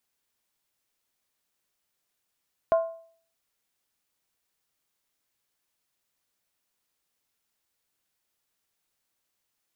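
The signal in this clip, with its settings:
struck skin, lowest mode 660 Hz, decay 0.52 s, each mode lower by 11 dB, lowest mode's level −15.5 dB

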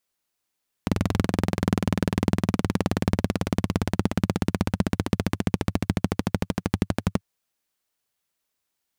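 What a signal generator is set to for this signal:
pulse-train model of a single-cylinder engine, changing speed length 6.34 s, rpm 2,600, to 1,400, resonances 100/180 Hz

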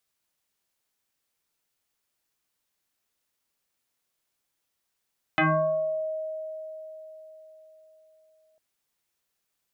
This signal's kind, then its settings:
two-operator FM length 3.20 s, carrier 630 Hz, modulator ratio 0.75, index 4.6, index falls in 0.77 s exponential, decay 4.28 s, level −18 dB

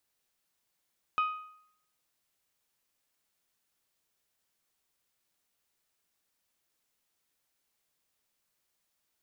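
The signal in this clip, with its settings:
struck metal bell, lowest mode 1,250 Hz, decay 0.68 s, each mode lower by 10 dB, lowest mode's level −23 dB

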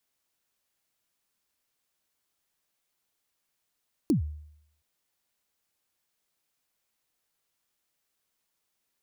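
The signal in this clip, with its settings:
synth kick length 0.72 s, from 350 Hz, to 75 Hz, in 118 ms, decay 0.72 s, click on, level −17.5 dB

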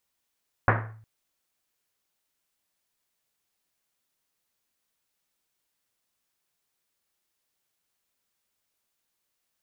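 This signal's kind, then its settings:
drum after Risset length 0.36 s, pitch 110 Hz, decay 0.71 s, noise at 1,100 Hz, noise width 1,500 Hz, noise 50%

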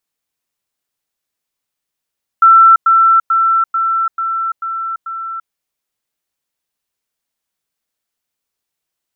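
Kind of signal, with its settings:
level staircase 1,340 Hz −3 dBFS, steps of −3 dB, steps 7, 0.34 s 0.10 s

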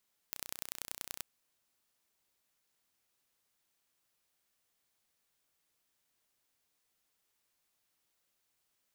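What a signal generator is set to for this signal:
impulse train 30.8 per second, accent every 3, −10.5 dBFS 0.88 s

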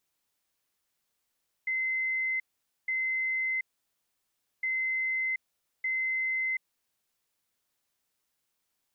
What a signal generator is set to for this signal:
beeps in groups sine 2,060 Hz, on 0.73 s, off 0.48 s, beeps 2, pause 1.02 s, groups 2, −27 dBFS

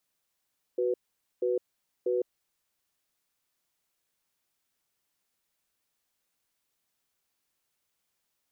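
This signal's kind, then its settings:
tone pair in a cadence 371 Hz, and 493 Hz, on 0.16 s, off 0.48 s, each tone −27.5 dBFS 1.73 s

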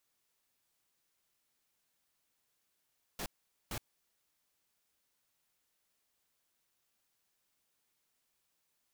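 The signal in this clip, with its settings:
noise bursts pink, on 0.07 s, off 0.45 s, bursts 2, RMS −39.5 dBFS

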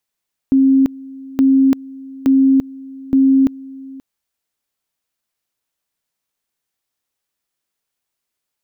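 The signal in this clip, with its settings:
tone at two levels in turn 268 Hz −8 dBFS, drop 22 dB, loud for 0.34 s, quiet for 0.53 s, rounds 4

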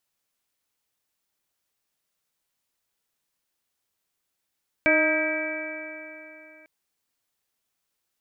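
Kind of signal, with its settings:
stiff-string partials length 1.80 s, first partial 309 Hz, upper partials 3/−10.5/−11.5/0/−6/5 dB, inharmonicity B 0.0028, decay 3.19 s, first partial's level −24 dB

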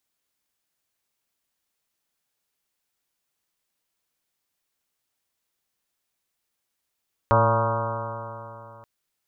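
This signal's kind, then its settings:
stiff-string partials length 1.53 s, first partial 111 Hz, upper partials −9.5/−13/−8/0.5/−8.5/−7/−0.5/−3/−5/−10/−17 dB, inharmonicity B 0.0024, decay 3.00 s, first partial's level −20 dB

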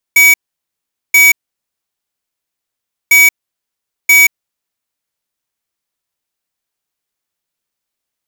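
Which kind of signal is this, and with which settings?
beeps in groups square 2,270 Hz, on 0.18 s, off 0.80 s, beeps 2, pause 1.79 s, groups 2, −6 dBFS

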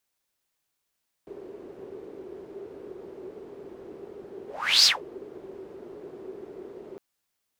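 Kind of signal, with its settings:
pass-by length 5.71 s, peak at 0:03.58, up 0.41 s, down 0.17 s, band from 390 Hz, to 5,000 Hz, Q 7.8, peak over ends 25.5 dB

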